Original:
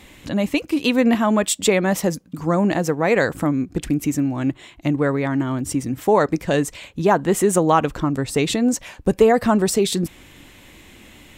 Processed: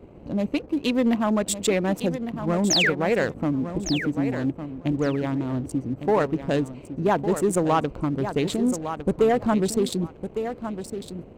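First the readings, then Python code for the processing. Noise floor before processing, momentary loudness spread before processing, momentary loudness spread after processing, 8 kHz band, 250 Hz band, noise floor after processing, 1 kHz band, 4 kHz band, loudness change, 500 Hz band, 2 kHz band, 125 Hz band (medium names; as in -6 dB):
-47 dBFS, 7 LU, 9 LU, -5.0 dB, -4.0 dB, -45 dBFS, -5.5 dB, -0.5 dB, -4.5 dB, -4.5 dB, -3.5 dB, -4.0 dB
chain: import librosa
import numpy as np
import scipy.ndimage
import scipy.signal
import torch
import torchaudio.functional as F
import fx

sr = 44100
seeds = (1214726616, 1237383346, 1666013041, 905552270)

y = fx.wiener(x, sr, points=25)
y = fx.spec_paint(y, sr, seeds[0], shape='fall', start_s=2.7, length_s=0.2, low_hz=1300.0, high_hz=7200.0, level_db=-16.0)
y = fx.echo_feedback(y, sr, ms=1157, feedback_pct=17, wet_db=-10.5)
y = fx.dmg_noise_band(y, sr, seeds[1], low_hz=36.0, high_hz=520.0, level_db=-41.0)
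y = fx.leveller(y, sr, passes=1)
y = y * 10.0 ** (-7.5 / 20.0)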